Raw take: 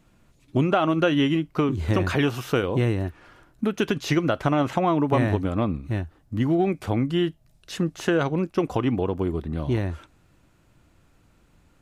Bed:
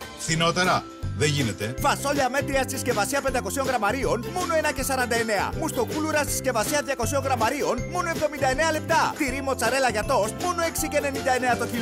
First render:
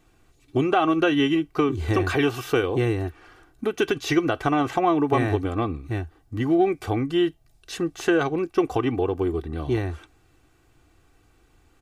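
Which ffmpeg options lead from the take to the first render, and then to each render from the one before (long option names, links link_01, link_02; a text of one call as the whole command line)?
ffmpeg -i in.wav -af "lowshelf=frequency=220:gain=-3,aecho=1:1:2.6:0.64" out.wav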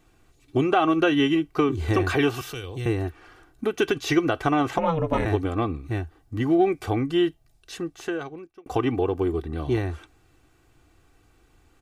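ffmpeg -i in.wav -filter_complex "[0:a]asettb=1/sr,asplit=3[link_01][link_02][link_03];[link_01]atrim=end=2.414[link_04];[link_02]atrim=start=2.41:end=2.86,asetpts=PTS-STARTPTS,afade=type=in:duration=0.004:curve=qsin,afade=type=out:start_time=0.446:duration=0.004:curve=qsin,acrossover=split=120|3000[link_05][link_06][link_07];[link_06]acompressor=threshold=-43dB:ratio=2.5:attack=3.2:release=140:knee=2.83:detection=peak[link_08];[link_05][link_08][link_07]amix=inputs=3:normalize=0[link_09];[link_03]atrim=start=2.856[link_10];[link_04][link_09]acrossfade=duration=0.004:curve1=hsin:curve2=qsin[link_11];[link_11][link_10]acrossfade=duration=0.004:curve1=qsin:curve2=hsin,asettb=1/sr,asplit=3[link_12][link_13][link_14];[link_12]atrim=end=4.784[link_15];[link_13]atrim=start=4.78:end=5.26,asetpts=PTS-STARTPTS,afade=type=in:duration=0.004:curve=qsin,afade=type=out:start_time=0.476:duration=0.004:curve=qsin,aeval=exprs='val(0)*sin(2*PI*160*n/s)':channel_layout=same[link_16];[link_14]atrim=start=5.256[link_17];[link_15][link_16]acrossfade=duration=0.004:curve1=hsin:curve2=qsin[link_18];[link_18][link_17]acrossfade=duration=0.004:curve1=qsin:curve2=hsin,asplit=2[link_19][link_20];[link_19]atrim=end=8.66,asetpts=PTS-STARTPTS,afade=type=out:start_time=7.2:duration=1.46[link_21];[link_20]atrim=start=8.66,asetpts=PTS-STARTPTS,afade=type=in:duration=0.004:curve=hsin[link_22];[link_21][link_22]concat=n=2:v=0:a=1" out.wav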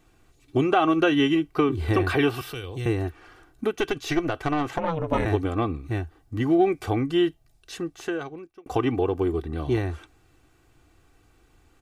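ffmpeg -i in.wav -filter_complex "[0:a]asettb=1/sr,asplit=3[link_01][link_02][link_03];[link_01]atrim=end=1.554[link_04];[link_02]atrim=start=1.55:end=2.72,asetpts=PTS-STARTPTS,afade=type=in:duration=0.004:curve=qsin,afade=type=out:start_time=1.166:duration=0.004:curve=qsin,equalizer=frequency=6600:width=3.4:gain=-10[link_05];[link_03]atrim=start=2.716[link_06];[link_04][link_05]acrossfade=duration=0.004:curve1=hsin:curve2=qsin[link_07];[link_07][link_06]acrossfade=duration=0.004:curve1=qsin:curve2=hsin,asettb=1/sr,asplit=3[link_08][link_09][link_10];[link_08]atrim=end=3.714[link_11];[link_09]atrim=start=3.71:end=5.08,asetpts=PTS-STARTPTS,afade=type=in:duration=0.004:curve=qsin,afade=type=out:start_time=1.366:duration=0.004:curve=qsin,aeval=exprs='(tanh(5.01*val(0)+0.65)-tanh(0.65))/5.01':channel_layout=same[link_12];[link_10]atrim=start=5.076[link_13];[link_11][link_12]acrossfade=duration=0.004:curve1=hsin:curve2=qsin[link_14];[link_14][link_13]acrossfade=duration=0.004:curve1=qsin:curve2=hsin" out.wav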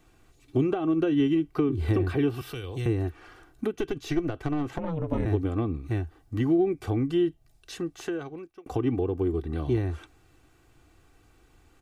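ffmpeg -i in.wav -filter_complex "[0:a]acrossover=split=410[link_01][link_02];[link_02]acompressor=threshold=-38dB:ratio=5[link_03];[link_01][link_03]amix=inputs=2:normalize=0" out.wav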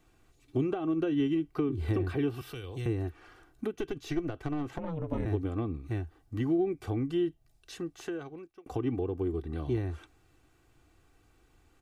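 ffmpeg -i in.wav -af "volume=-5dB" out.wav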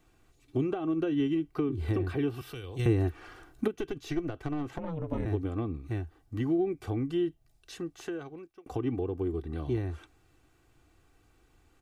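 ffmpeg -i in.wav -filter_complex "[0:a]asettb=1/sr,asplit=3[link_01][link_02][link_03];[link_01]atrim=end=2.794[link_04];[link_02]atrim=start=2.79:end=3.68,asetpts=PTS-STARTPTS,afade=type=in:duration=0.004:curve=qsin,afade=type=out:start_time=0.886:duration=0.004:curve=qsin,acontrast=51[link_05];[link_03]atrim=start=3.676[link_06];[link_04][link_05]acrossfade=duration=0.004:curve1=hsin:curve2=qsin[link_07];[link_07][link_06]acrossfade=duration=0.004:curve1=qsin:curve2=hsin" out.wav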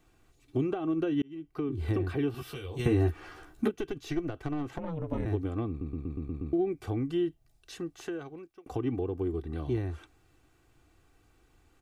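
ffmpeg -i in.wav -filter_complex "[0:a]asettb=1/sr,asplit=3[link_01][link_02][link_03];[link_01]atrim=end=2.334[link_04];[link_02]atrim=start=2.33:end=3.7,asetpts=PTS-STARTPTS,afade=type=in:duration=0.004:curve=qsin,afade=type=out:start_time=1.366:duration=0.004:curve=qsin,asplit=2[link_05][link_06];[link_06]adelay=13,volume=-3dB[link_07];[link_05][link_07]amix=inputs=2:normalize=0,atrim=end_sample=60417[link_08];[link_03]atrim=start=3.696[link_09];[link_04][link_08]acrossfade=duration=0.004:curve1=hsin:curve2=qsin[link_10];[link_10][link_09]acrossfade=duration=0.004:curve1=qsin:curve2=hsin,asplit=9[link_11][link_12][link_13][link_14][link_15][link_16][link_17][link_18][link_19];[link_11]atrim=end=1.22,asetpts=PTS-STARTPTS,afade=type=out:start_time=1.216:duration=0.004:curve=hsin[link_20];[link_12]atrim=start=1.22:end=5.812,asetpts=PTS-STARTPTS,afade=type=in:duration=0.58[link_21];[link_13]atrim=start=5.688:end=5.812[link_22];[link_14]atrim=start=5.688:end=5.812[link_23];[link_15]atrim=start=5.688:end=5.812[link_24];[link_16]atrim=start=5.688:end=5.812[link_25];[link_17]atrim=start=5.688:end=5.812[link_26];[link_18]atrim=start=5.688:end=5.812[link_27];[link_19]atrim=start=6.528[link_28];[link_20][link_21]concat=n=2:v=0:a=1[link_29];[link_29][link_22]acrossfade=duration=0.004:curve1=hsin:curve2=hsin[link_30];[link_30][link_23]acrossfade=duration=0.004:curve1=hsin:curve2=hsin[link_31];[link_31][link_24]acrossfade=duration=0.004:curve1=hsin:curve2=hsin[link_32];[link_32][link_25]acrossfade=duration=0.004:curve1=hsin:curve2=hsin[link_33];[link_33][link_26]acrossfade=duration=0.004:curve1=hsin:curve2=hsin[link_34];[link_34][link_27]acrossfade=duration=0.004:curve1=hsin:curve2=hsin[link_35];[link_35][link_28]acrossfade=duration=0.004:curve1=hsin:curve2=hsin" out.wav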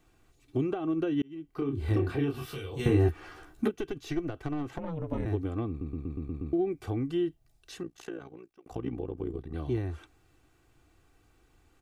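ffmpeg -i in.wav -filter_complex "[0:a]asettb=1/sr,asplit=3[link_01][link_02][link_03];[link_01]atrim=end=1.464[link_04];[link_02]atrim=start=1.46:end=3.09,asetpts=PTS-STARTPTS,afade=type=in:duration=0.004:curve=qsin,afade=type=out:start_time=1.626:duration=0.004:curve=qsin,asplit=2[link_05][link_06];[link_06]adelay=29,volume=-4dB[link_07];[link_05][link_07]amix=inputs=2:normalize=0,atrim=end_sample=71883[link_08];[link_03]atrim=start=3.086[link_09];[link_04][link_08]acrossfade=duration=0.004:curve1=hsin:curve2=qsin[link_10];[link_10][link_09]acrossfade=duration=0.004:curve1=qsin:curve2=hsin,asettb=1/sr,asplit=3[link_11][link_12][link_13];[link_11]atrim=end=7.834[link_14];[link_12]atrim=start=7.83:end=9.54,asetpts=PTS-STARTPTS,afade=type=in:duration=0.004:curve=qsin,afade=type=out:start_time=1.706:duration=0.004:curve=qsin,tremolo=f=59:d=0.857[link_15];[link_13]atrim=start=9.536[link_16];[link_14][link_15]acrossfade=duration=0.004:curve1=hsin:curve2=qsin[link_17];[link_17][link_16]acrossfade=duration=0.004:curve1=qsin:curve2=hsin" out.wav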